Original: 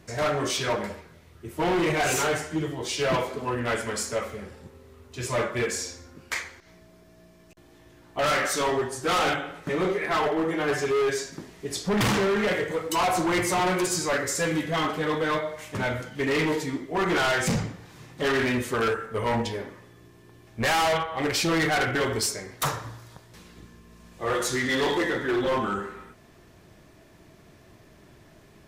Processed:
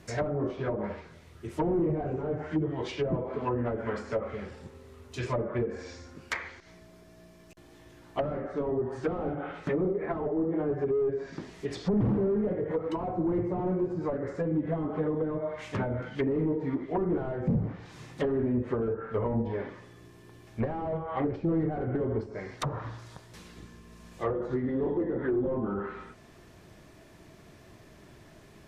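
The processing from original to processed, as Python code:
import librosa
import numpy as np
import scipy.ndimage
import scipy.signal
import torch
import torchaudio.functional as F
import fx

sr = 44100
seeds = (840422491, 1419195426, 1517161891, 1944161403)

y = fx.env_lowpass_down(x, sr, base_hz=400.0, full_db=-22.5)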